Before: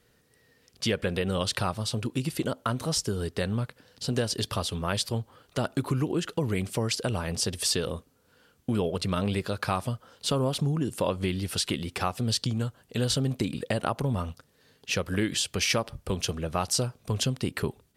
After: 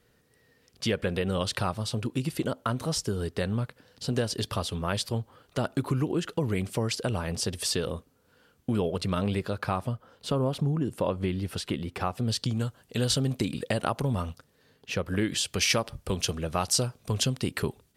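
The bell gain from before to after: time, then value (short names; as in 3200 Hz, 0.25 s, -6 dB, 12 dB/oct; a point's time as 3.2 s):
bell 7900 Hz 2.9 oct
9.21 s -3 dB
9.78 s -10 dB
12.06 s -10 dB
12.61 s +1.5 dB
14.23 s +1.5 dB
14.96 s -9 dB
15.56 s +2 dB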